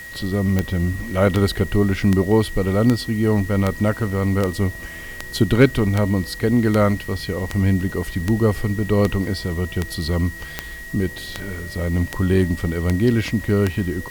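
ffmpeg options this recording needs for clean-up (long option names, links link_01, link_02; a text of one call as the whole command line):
ffmpeg -i in.wav -af "adeclick=threshold=4,bandreject=frequency=1900:width=30,afwtdn=0.0056" out.wav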